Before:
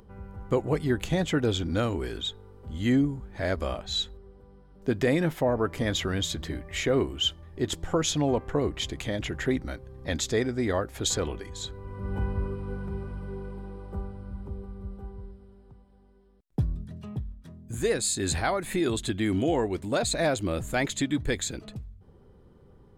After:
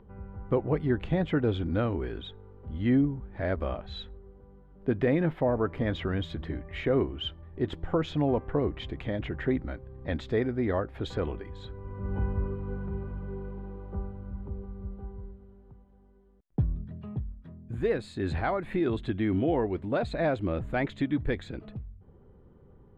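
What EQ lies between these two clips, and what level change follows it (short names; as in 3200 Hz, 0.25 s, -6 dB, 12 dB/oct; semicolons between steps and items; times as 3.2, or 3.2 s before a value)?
air absorption 470 m; 0.0 dB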